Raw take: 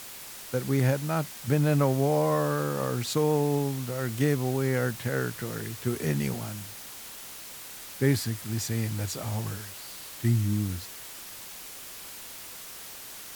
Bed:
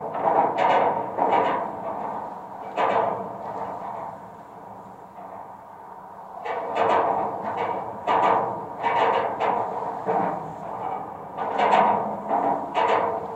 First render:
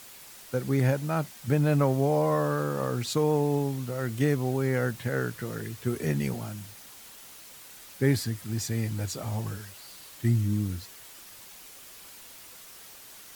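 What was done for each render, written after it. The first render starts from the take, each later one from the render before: denoiser 6 dB, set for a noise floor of -43 dBFS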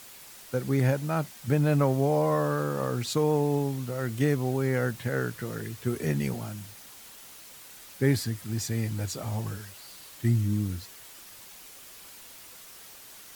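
nothing audible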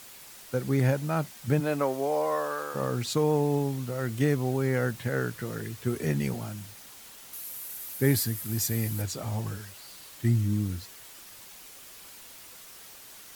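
1.59–2.74 HPF 270 Hz -> 680 Hz; 7.33–9.02 bell 13000 Hz +14.5 dB 0.82 oct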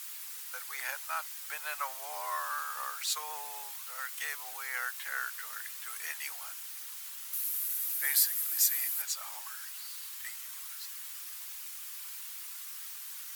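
inverse Chebyshev high-pass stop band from 230 Hz, stop band 70 dB; high shelf 9500 Hz +8 dB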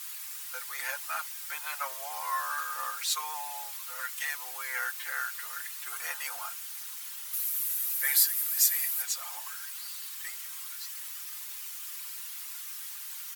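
5.91–6.48 spectral gain 410–1600 Hz +7 dB; comb 5.7 ms, depth 92%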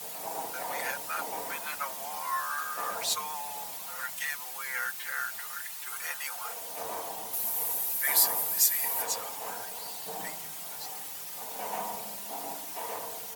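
add bed -18 dB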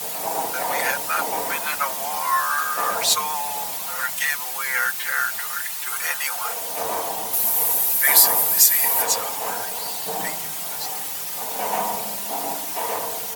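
gain +11 dB; limiter -1 dBFS, peak gain reduction 3 dB

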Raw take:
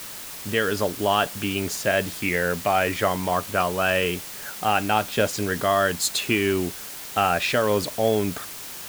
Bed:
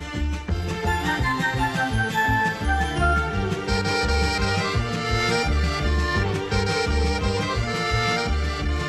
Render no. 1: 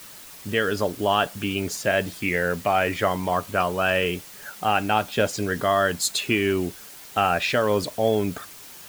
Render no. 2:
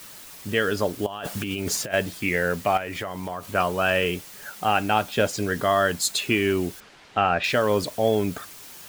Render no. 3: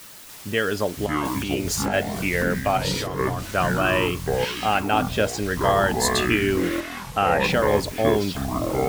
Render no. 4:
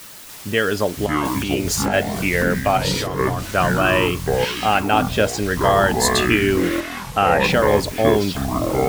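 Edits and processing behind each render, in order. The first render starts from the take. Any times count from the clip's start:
denoiser 7 dB, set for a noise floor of -37 dBFS
1.06–1.94 negative-ratio compressor -30 dBFS; 2.77–3.55 compressor, threshold -27 dBFS; 6.8–7.44 LPF 3300 Hz
echoes that change speed 0.29 s, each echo -7 st, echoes 3
gain +4 dB; limiter -1 dBFS, peak gain reduction 1 dB

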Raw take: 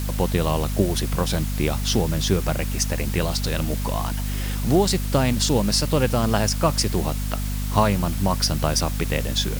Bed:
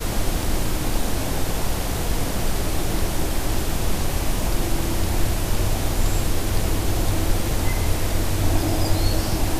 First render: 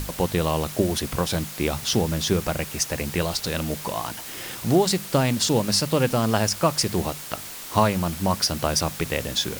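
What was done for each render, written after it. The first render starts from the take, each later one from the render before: notches 50/100/150/200/250 Hz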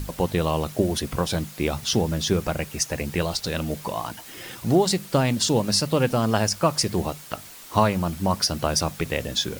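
denoiser 7 dB, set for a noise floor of -37 dBFS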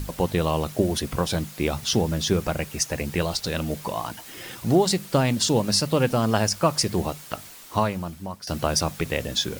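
7.43–8.47 fade out, to -18.5 dB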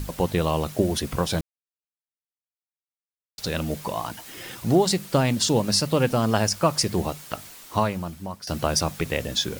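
1.41–3.38 mute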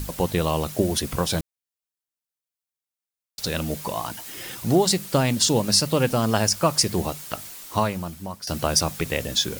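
high shelf 4800 Hz +6 dB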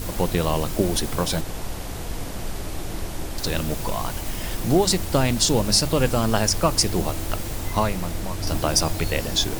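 add bed -7.5 dB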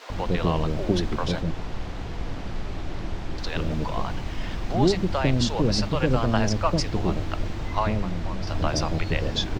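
air absorption 190 m; bands offset in time highs, lows 0.1 s, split 530 Hz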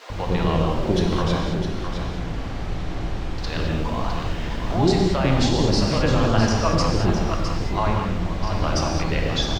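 echo 0.659 s -8 dB; non-linear reverb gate 0.25 s flat, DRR 0 dB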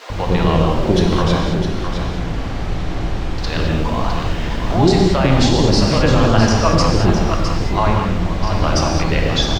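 gain +6 dB; limiter -2 dBFS, peak gain reduction 2 dB

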